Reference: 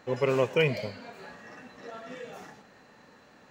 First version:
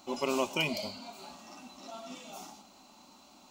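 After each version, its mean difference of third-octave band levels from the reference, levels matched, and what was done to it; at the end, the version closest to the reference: 7.5 dB: treble shelf 2.4 kHz +10.5 dB; static phaser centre 470 Hz, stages 6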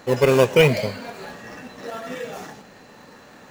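2.0 dB: treble shelf 4.2 kHz +6 dB; in parallel at -7.5 dB: decimation with a swept rate 15×, swing 100% 0.82 Hz; on the sum: trim +7 dB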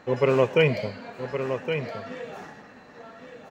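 3.5 dB: treble shelf 4.7 kHz -9 dB; delay 1117 ms -8 dB; trim +5 dB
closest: second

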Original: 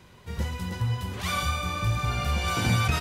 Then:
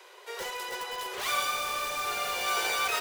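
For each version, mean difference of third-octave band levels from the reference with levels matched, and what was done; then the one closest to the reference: 10.0 dB: steep high-pass 370 Hz 96 dB/octave; in parallel at -3.5 dB: integer overflow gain 32.5 dB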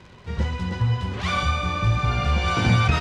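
3.5 dB: crackle 200 per s -41 dBFS; distance through air 120 m; trim +5.5 dB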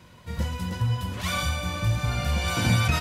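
1.0 dB: comb of notches 400 Hz; trim +2.5 dB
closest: third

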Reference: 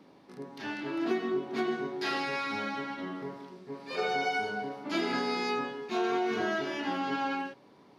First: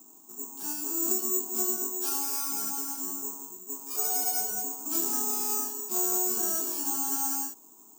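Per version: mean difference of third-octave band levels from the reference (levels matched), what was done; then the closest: 16.0 dB: in parallel at -4.5 dB: saturation -35 dBFS, distortion -8 dB; on the sum: careless resampling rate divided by 6×, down filtered, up zero stuff; static phaser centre 530 Hz, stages 6; trim -7 dB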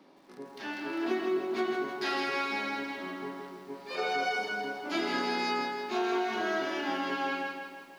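4.5 dB: high-pass 250 Hz 12 dB/octave; band-stop 460 Hz, Q 12; bit-crushed delay 163 ms, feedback 55%, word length 10-bit, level -6 dB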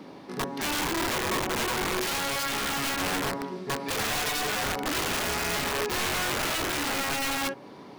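12.0 dB: in parallel at -0.5 dB: compressor with a negative ratio -38 dBFS, ratio -0.5; on the sum: dynamic bell 4.1 kHz, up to -7 dB, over -51 dBFS, Q 1; integer overflow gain 26.5 dB; trim +3 dB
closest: second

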